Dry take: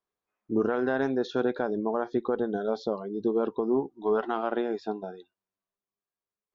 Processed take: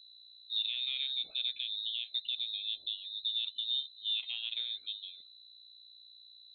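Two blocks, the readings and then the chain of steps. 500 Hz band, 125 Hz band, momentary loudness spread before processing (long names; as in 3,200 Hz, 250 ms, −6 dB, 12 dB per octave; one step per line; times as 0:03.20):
below −40 dB, below −40 dB, 5 LU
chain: hum with harmonics 60 Hz, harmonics 9, −50 dBFS −7 dB per octave
high-frequency loss of the air 450 metres
voice inversion scrambler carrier 4,000 Hz
level −8 dB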